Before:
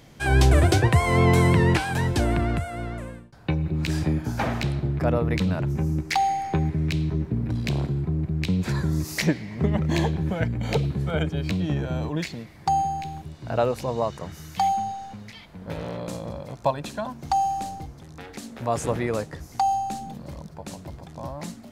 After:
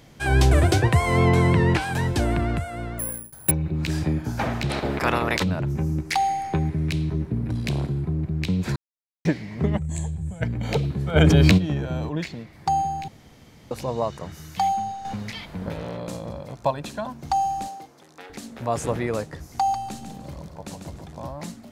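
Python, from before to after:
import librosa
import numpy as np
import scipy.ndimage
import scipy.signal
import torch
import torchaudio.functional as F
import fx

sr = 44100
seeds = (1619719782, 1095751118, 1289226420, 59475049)

y = fx.lowpass(x, sr, hz=fx.line((1.28, 3800.0), (1.81, 6400.0)), slope=6, at=(1.28, 1.81), fade=0.02)
y = fx.resample_bad(y, sr, factor=4, down='filtered', up='zero_stuff', at=(2.99, 3.51))
y = fx.spec_clip(y, sr, under_db=25, at=(4.69, 5.42), fade=0.02)
y = fx.peak_eq(y, sr, hz=10000.0, db=6.5, octaves=0.39, at=(6.06, 8.13))
y = fx.curve_eq(y, sr, hz=(110.0, 330.0, 680.0, 1300.0, 5500.0, 7800.0, 13000.0), db=(0, -19, -14, -18, -15, 14, -13), at=(9.77, 10.41), fade=0.02)
y = fx.env_flatten(y, sr, amount_pct=100, at=(11.15, 11.57), fade=0.02)
y = fx.high_shelf(y, sr, hz=6000.0, db=-8.0, at=(12.09, 12.53))
y = fx.highpass(y, sr, hz=360.0, slope=12, at=(17.67, 18.3))
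y = fx.echo_feedback(y, sr, ms=145, feedback_pct=29, wet_db=-7.0, at=(19.42, 21.28))
y = fx.edit(y, sr, fx.silence(start_s=8.76, length_s=0.49),
    fx.room_tone_fill(start_s=13.08, length_s=0.63),
    fx.clip_gain(start_s=15.05, length_s=0.64, db=8.5), tone=tone)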